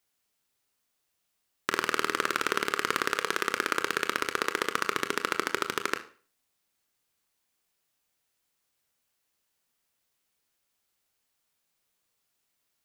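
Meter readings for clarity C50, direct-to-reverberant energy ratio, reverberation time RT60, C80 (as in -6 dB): 14.5 dB, 8.0 dB, 0.40 s, 19.5 dB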